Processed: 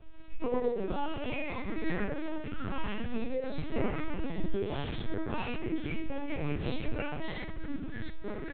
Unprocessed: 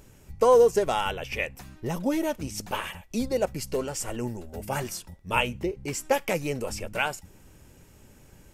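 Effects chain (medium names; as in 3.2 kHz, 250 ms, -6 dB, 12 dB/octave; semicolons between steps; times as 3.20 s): rattle on loud lows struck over -34 dBFS, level -32 dBFS; reverse; upward compressor, threshold -45 dBFS; reverse; peak limiter -18.5 dBFS, peak gain reduction 9.5 dB; compression 6:1, threshold -37 dBFS, peak gain reduction 14 dB; chorus 1.2 Hz, delay 19 ms, depth 3.8 ms; doubling 21 ms -2 dB; ever faster or slower copies 91 ms, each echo -5 st, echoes 2; thinning echo 100 ms, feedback 56%, high-pass 720 Hz, level -24 dB; reverberation RT60 0.70 s, pre-delay 5 ms, DRR -1.5 dB; LPC vocoder at 8 kHz pitch kept; trim -1 dB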